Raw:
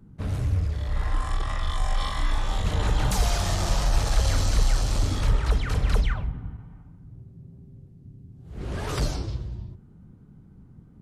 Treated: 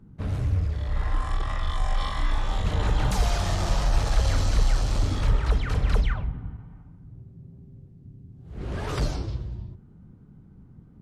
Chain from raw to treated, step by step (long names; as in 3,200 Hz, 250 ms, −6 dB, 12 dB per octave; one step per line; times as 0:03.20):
high-shelf EQ 6,100 Hz −8.5 dB